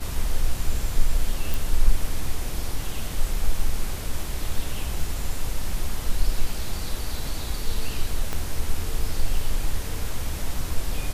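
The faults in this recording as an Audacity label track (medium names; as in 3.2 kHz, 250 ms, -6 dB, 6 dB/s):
1.540000	1.540000	pop
3.590000	3.590000	dropout 2 ms
8.330000	8.330000	pop -13 dBFS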